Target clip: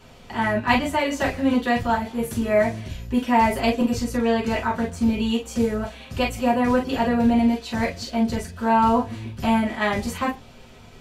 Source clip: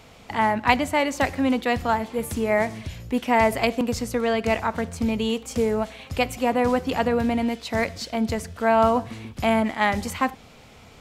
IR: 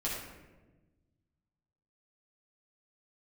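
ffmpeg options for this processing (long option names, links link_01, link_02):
-filter_complex "[1:a]atrim=start_sample=2205,atrim=end_sample=3528,asetrate=61740,aresample=44100[link_01];[0:a][link_01]afir=irnorm=-1:irlink=0"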